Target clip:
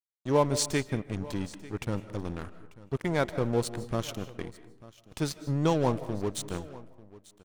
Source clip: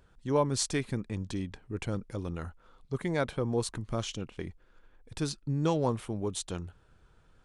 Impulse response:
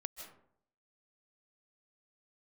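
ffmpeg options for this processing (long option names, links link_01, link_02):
-filter_complex "[0:a]aeval=exprs='sgn(val(0))*max(abs(val(0))-0.00891,0)':channel_layout=same,aecho=1:1:892:0.1,asplit=2[link_01][link_02];[1:a]atrim=start_sample=2205[link_03];[link_02][link_03]afir=irnorm=-1:irlink=0,volume=-1.5dB[link_04];[link_01][link_04]amix=inputs=2:normalize=0"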